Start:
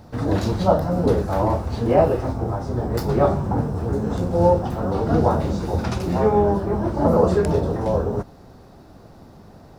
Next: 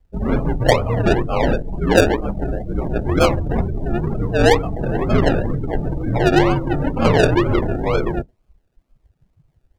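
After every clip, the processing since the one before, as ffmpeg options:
ffmpeg -i in.wav -af "afreqshift=-61,acrusher=samples=33:mix=1:aa=0.000001:lfo=1:lforange=19.8:lforate=2.1,afftdn=noise_reduction=29:noise_floor=-27,volume=3dB" out.wav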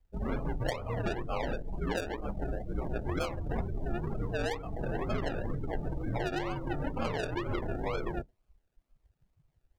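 ffmpeg -i in.wav -af "lowshelf=frequency=430:gain=-8,acompressor=threshold=-22dB:ratio=12,lowshelf=frequency=97:gain=6.5,volume=-8dB" out.wav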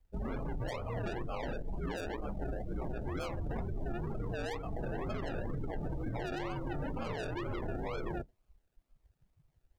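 ffmpeg -i in.wav -af "alimiter=level_in=6dB:limit=-24dB:level=0:latency=1:release=14,volume=-6dB" out.wav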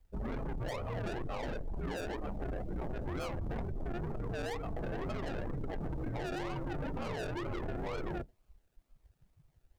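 ffmpeg -i in.wav -af "asoftclip=type=tanh:threshold=-36.5dB,volume=3.5dB" out.wav

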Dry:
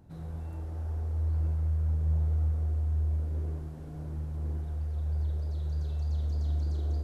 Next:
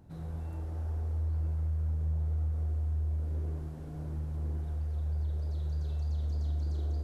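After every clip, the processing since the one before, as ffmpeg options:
ffmpeg -i in.wav -af "acompressor=threshold=-30dB:ratio=2.5" out.wav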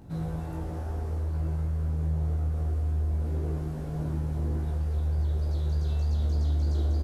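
ffmpeg -i in.wav -filter_complex "[0:a]asplit=2[link_01][link_02];[link_02]adelay=18,volume=-3dB[link_03];[link_01][link_03]amix=inputs=2:normalize=0,volume=7.5dB" out.wav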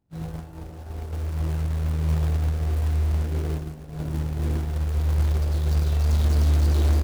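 ffmpeg -i in.wav -filter_complex "[0:a]agate=range=-33dB:threshold=-24dB:ratio=3:detection=peak,asplit=2[link_01][link_02];[link_02]acrusher=bits=3:mode=log:mix=0:aa=0.000001,volume=2dB[link_03];[link_01][link_03]amix=inputs=2:normalize=0" out.wav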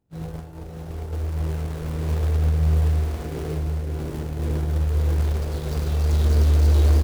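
ffmpeg -i in.wav -filter_complex "[0:a]equalizer=frequency=450:width=3.3:gain=5.5,asplit=2[link_01][link_02];[link_02]aecho=0:1:213|552|628:0.106|0.531|0.355[link_03];[link_01][link_03]amix=inputs=2:normalize=0" out.wav

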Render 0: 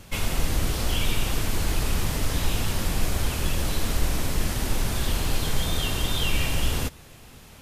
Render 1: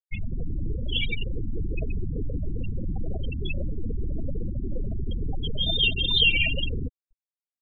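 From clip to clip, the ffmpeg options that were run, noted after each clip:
ffmpeg -i in.wav -filter_complex "[0:a]afftfilt=real='re*gte(hypot(re,im),0.1)':imag='im*gte(hypot(re,im),0.1)':win_size=1024:overlap=0.75,acrossover=split=560[link_01][link_02];[link_01]alimiter=limit=-22dB:level=0:latency=1:release=15[link_03];[link_02]dynaudnorm=framelen=270:gausssize=7:maxgain=12dB[link_04];[link_03][link_04]amix=inputs=2:normalize=0" out.wav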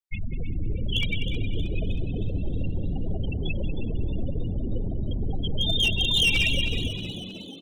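ffmpeg -i in.wav -filter_complex "[0:a]asplit=2[link_01][link_02];[link_02]aecho=0:1:192|384|576:0.251|0.0754|0.0226[link_03];[link_01][link_03]amix=inputs=2:normalize=0,volume=17dB,asoftclip=hard,volume=-17dB,asplit=2[link_04][link_05];[link_05]asplit=6[link_06][link_07][link_08][link_09][link_10][link_11];[link_06]adelay=315,afreqshift=87,volume=-11dB[link_12];[link_07]adelay=630,afreqshift=174,volume=-16.2dB[link_13];[link_08]adelay=945,afreqshift=261,volume=-21.4dB[link_14];[link_09]adelay=1260,afreqshift=348,volume=-26.6dB[link_15];[link_10]adelay=1575,afreqshift=435,volume=-31.8dB[link_16];[link_11]adelay=1890,afreqshift=522,volume=-37dB[link_17];[link_12][link_13][link_14][link_15][link_16][link_17]amix=inputs=6:normalize=0[link_18];[link_04][link_18]amix=inputs=2:normalize=0" out.wav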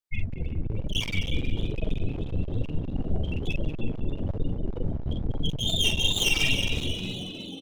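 ffmpeg -i in.wav -filter_complex "[0:a]flanger=delay=6.4:depth=7.7:regen=48:speed=1.1:shape=sinusoidal,asplit=2[link_01][link_02];[link_02]adelay=44,volume=-3dB[link_03];[link_01][link_03]amix=inputs=2:normalize=0,aeval=exprs='clip(val(0),-1,0.0168)':channel_layout=same,volume=4dB" out.wav

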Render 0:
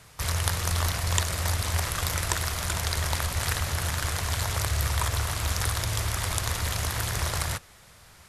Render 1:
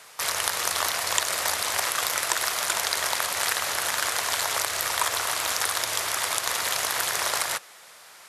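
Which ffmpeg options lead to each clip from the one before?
ffmpeg -i in.wav -filter_complex "[0:a]highpass=500,asplit=2[link_01][link_02];[link_02]alimiter=limit=-15.5dB:level=0:latency=1:release=123,volume=-0.5dB[link_03];[link_01][link_03]amix=inputs=2:normalize=0" out.wav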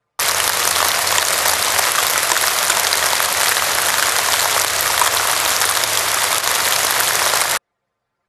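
ffmpeg -i in.wav -af "anlmdn=15.8,apsyclip=12dB,volume=-1.5dB" out.wav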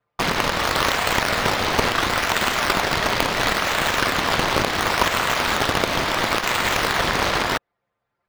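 ffmpeg -i in.wav -filter_complex "[0:a]aeval=exprs='(mod(1.5*val(0)+1,2)-1)/1.5':channel_layout=same,acrossover=split=4900[link_01][link_02];[link_02]acrusher=samples=16:mix=1:aa=0.000001:lfo=1:lforange=16:lforate=0.72[link_03];[link_01][link_03]amix=inputs=2:normalize=0,volume=-3.5dB" out.wav

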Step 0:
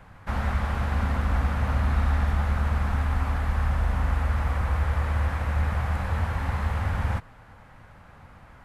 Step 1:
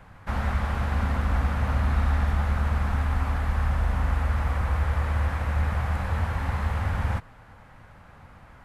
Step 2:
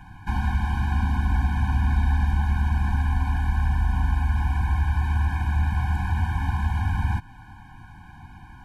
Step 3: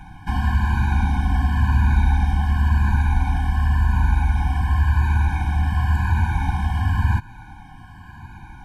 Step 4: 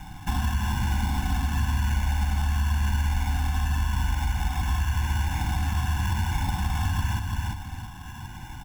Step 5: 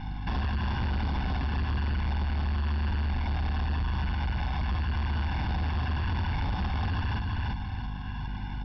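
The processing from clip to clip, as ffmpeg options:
ffmpeg -i in.wav -af anull out.wav
ffmpeg -i in.wav -filter_complex "[0:a]asplit=2[link_01][link_02];[link_02]acompressor=threshold=-31dB:ratio=6,volume=-0.5dB[link_03];[link_01][link_03]amix=inputs=2:normalize=0,afftfilt=real='re*eq(mod(floor(b*sr/1024/360),2),0)':imag='im*eq(mod(floor(b*sr/1024/360),2),0)':win_size=1024:overlap=0.75" out.wav
ffmpeg -i in.wav -af "afftfilt=real='re*pow(10,7/40*sin(2*PI*(1.4*log(max(b,1)*sr/1024/100)/log(2)-(-0.93)*(pts-256)/sr)))':imag='im*pow(10,7/40*sin(2*PI*(1.4*log(max(b,1)*sr/1024/100)/log(2)-(-0.93)*(pts-256)/sr)))':win_size=1024:overlap=0.75,volume=3.5dB" out.wav
ffmpeg -i in.wav -filter_complex "[0:a]aecho=1:1:340|680|1020|1360:0.398|0.119|0.0358|0.0107,acrossover=split=1000|3400[link_01][link_02][link_03];[link_01]acompressor=threshold=-23dB:ratio=4[link_04];[link_02]acompressor=threshold=-37dB:ratio=4[link_05];[link_03]acompressor=threshold=-50dB:ratio=4[link_06];[link_04][link_05][link_06]amix=inputs=3:normalize=0,acrusher=samples=10:mix=1:aa=0.000001" out.wav
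ffmpeg -i in.wav -af "aeval=exprs='val(0)+0.0178*(sin(2*PI*50*n/s)+sin(2*PI*2*50*n/s)/2+sin(2*PI*3*50*n/s)/3+sin(2*PI*4*50*n/s)/4+sin(2*PI*5*50*n/s)/5)':channel_layout=same,aresample=11025,asoftclip=type=tanh:threshold=-26.5dB,aresample=44100,volume=1.5dB" out.wav

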